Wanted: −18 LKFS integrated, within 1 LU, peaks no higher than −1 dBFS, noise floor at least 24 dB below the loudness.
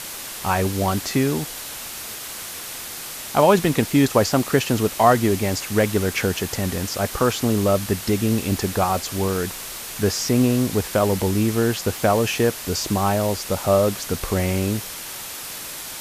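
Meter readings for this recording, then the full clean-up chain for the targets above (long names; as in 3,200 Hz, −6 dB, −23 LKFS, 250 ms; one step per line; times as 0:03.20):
background noise floor −34 dBFS; target noise floor −46 dBFS; integrated loudness −21.5 LKFS; sample peak −2.5 dBFS; target loudness −18.0 LKFS
→ noise reduction from a noise print 12 dB
level +3.5 dB
brickwall limiter −1 dBFS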